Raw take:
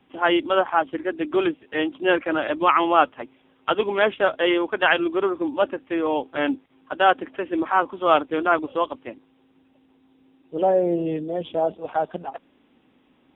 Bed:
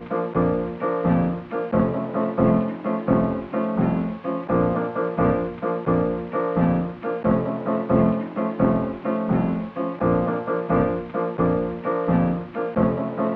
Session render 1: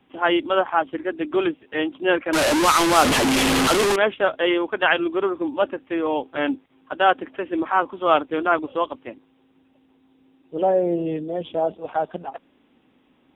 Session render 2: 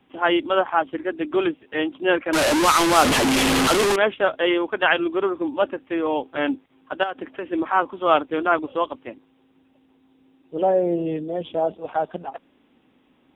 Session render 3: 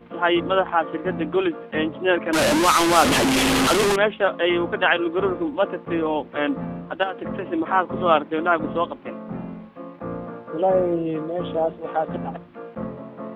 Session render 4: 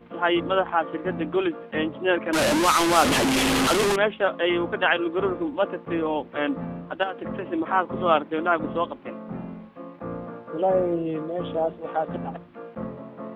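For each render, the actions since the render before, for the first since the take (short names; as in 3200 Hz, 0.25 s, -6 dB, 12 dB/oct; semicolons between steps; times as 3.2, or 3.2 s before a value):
2.33–3.96 delta modulation 64 kbps, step -12.5 dBFS
7.03–7.49 compressor, threshold -24 dBFS
add bed -11 dB
gain -2.5 dB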